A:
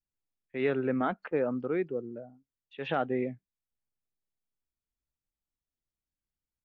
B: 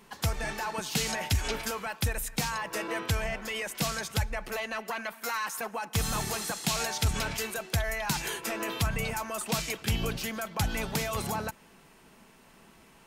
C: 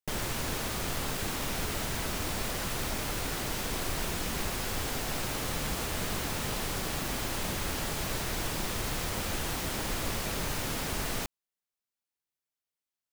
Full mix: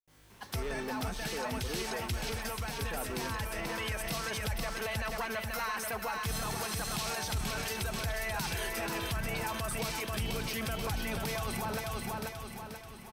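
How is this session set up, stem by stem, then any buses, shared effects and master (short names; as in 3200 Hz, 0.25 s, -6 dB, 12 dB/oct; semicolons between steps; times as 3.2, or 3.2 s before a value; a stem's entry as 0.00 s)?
-16.5 dB, 0.00 s, no send, no echo send, sample leveller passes 3
0.0 dB, 0.30 s, no send, echo send -6 dB, notch 7000 Hz, Q 6.2; auto duck -11 dB, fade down 1.70 s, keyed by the first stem
-15.0 dB, 0.00 s, no send, no echo send, resonator 52 Hz, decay 0.81 s, harmonics all, mix 100%; notch comb 210 Hz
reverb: off
echo: feedback echo 0.485 s, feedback 48%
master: limiter -26 dBFS, peak gain reduction 9.5 dB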